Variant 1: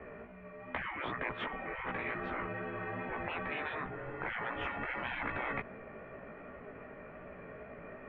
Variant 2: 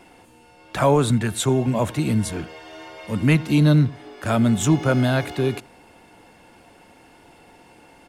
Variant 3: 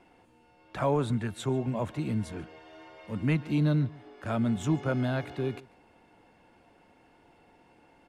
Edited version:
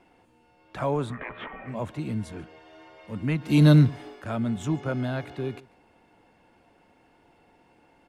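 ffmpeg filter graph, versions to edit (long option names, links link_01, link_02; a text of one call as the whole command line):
ffmpeg -i take0.wav -i take1.wav -i take2.wav -filter_complex "[2:a]asplit=3[link_01][link_02][link_03];[link_01]atrim=end=1.2,asetpts=PTS-STARTPTS[link_04];[0:a]atrim=start=1.04:end=1.78,asetpts=PTS-STARTPTS[link_05];[link_02]atrim=start=1.62:end=3.64,asetpts=PTS-STARTPTS[link_06];[1:a]atrim=start=3.4:end=4.25,asetpts=PTS-STARTPTS[link_07];[link_03]atrim=start=4.01,asetpts=PTS-STARTPTS[link_08];[link_04][link_05]acrossfade=duration=0.16:curve1=tri:curve2=tri[link_09];[link_09][link_06]acrossfade=duration=0.16:curve1=tri:curve2=tri[link_10];[link_10][link_07]acrossfade=duration=0.24:curve1=tri:curve2=tri[link_11];[link_11][link_08]acrossfade=duration=0.24:curve1=tri:curve2=tri" out.wav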